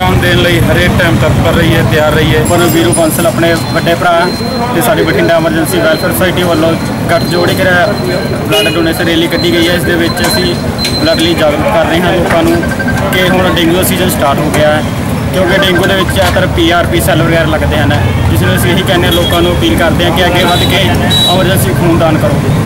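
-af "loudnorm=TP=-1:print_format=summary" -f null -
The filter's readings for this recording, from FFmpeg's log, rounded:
Input Integrated:     -8.5 LUFS
Input True Peak:      -0.3 dBTP
Input LRA:             1.6 LU
Input Threshold:     -18.5 LUFS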